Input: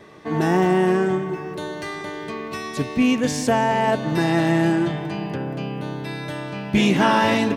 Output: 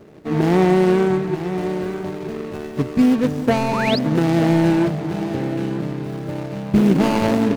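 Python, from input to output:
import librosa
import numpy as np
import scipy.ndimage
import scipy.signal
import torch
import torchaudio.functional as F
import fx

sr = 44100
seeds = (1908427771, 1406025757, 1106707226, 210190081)

y = scipy.ndimage.median_filter(x, 41, mode='constant')
y = y + 10.0 ** (-10.5 / 20.0) * np.pad(y, (int(934 * sr / 1000.0), 0))[:len(y)]
y = fx.spec_paint(y, sr, seeds[0], shape='rise', start_s=3.72, length_s=0.27, low_hz=840.0, high_hz=5300.0, level_db=-30.0)
y = F.gain(torch.from_numpy(y), 4.0).numpy()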